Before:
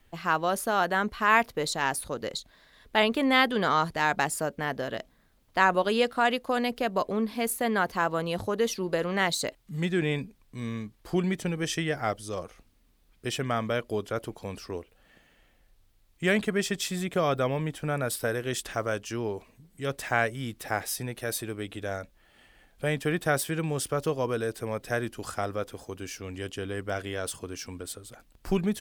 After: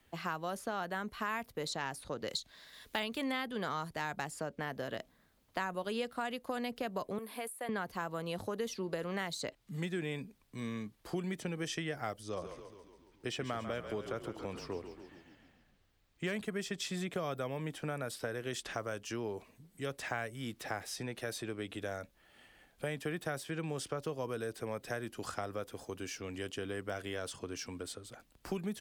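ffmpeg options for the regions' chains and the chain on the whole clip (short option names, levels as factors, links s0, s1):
-filter_complex "[0:a]asettb=1/sr,asplit=3[s0][s1][s2];[s0]atrim=end=2.284[s3];[s1]atrim=start=2.28:end=3.32,asetpts=PTS-STARTPTS,afade=t=in:d=0.004:c=qsin,afade=t=out:st=1.036:d=0.004:c=qsin,deesser=0.6,highshelf=f=2600:g=11.5[s4];[s2]atrim=start=3.316[s5];[s3][s4]acrossfade=d=0.004:c1=hsin:c2=qsin[s6];[s6][s5]acrossfade=d=0.004:c1=qsin:c2=hsin,asettb=1/sr,asplit=3[s7][s8][s9];[s7]atrim=end=7.184[s10];[s8]atrim=start=7.18:end=7.69,asetpts=PTS-STARTPTS,afade=t=in:d=0.004:c=qsin,afade=t=out:st=0.506:d=0.004:c=qsin,highpass=440,highshelf=f=7800:t=q:w=3:g=11,acompressor=threshold=0.0282:ratio=4:attack=3.2:release=140:knee=1:detection=peak[s11];[s9]atrim=start=7.686[s12];[s10][s11]acrossfade=d=0.004:c1=hsin:c2=qsin[s13];[s13][s12]acrossfade=d=0.004:c1=qsin:c2=hsin,asettb=1/sr,asplit=3[s14][s15][s16];[s14]atrim=end=12.234[s17];[s15]atrim=start=12.23:end=16.33,asetpts=PTS-STARTPTS,afade=t=in:d=0.004:c=qsin,afade=t=out:st=4.096:d=0.004:c=qsin,equalizer=f=12000:t=o:w=1:g=-11,asplit=8[s18][s19][s20][s21][s22][s23][s24][s25];[s19]adelay=139,afreqshift=-34,volume=0.282[s26];[s20]adelay=278,afreqshift=-68,volume=0.172[s27];[s21]adelay=417,afreqshift=-102,volume=0.105[s28];[s22]adelay=556,afreqshift=-136,volume=0.0638[s29];[s23]adelay=695,afreqshift=-170,volume=0.0389[s30];[s24]adelay=834,afreqshift=-204,volume=0.0237[s31];[s25]adelay=973,afreqshift=-238,volume=0.0145[s32];[s18][s26][s27][s28][s29][s30][s31][s32]amix=inputs=8:normalize=0,atrim=end_sample=180810,asoftclip=type=hard:threshold=0.141[s33];[s16]atrim=start=16.326[s34];[s17][s33]acrossfade=d=0.004:c1=hsin:c2=qsin[s35];[s35][s34]acrossfade=d=0.004:c1=qsin:c2=hsin,acrossover=split=160|7600[s36][s37][s38];[s36]acompressor=threshold=0.00562:ratio=4[s39];[s37]acompressor=threshold=0.0224:ratio=4[s40];[s38]acompressor=threshold=0.00158:ratio=4[s41];[s39][s40][s41]amix=inputs=3:normalize=0,highpass=f=83:p=1,volume=0.75"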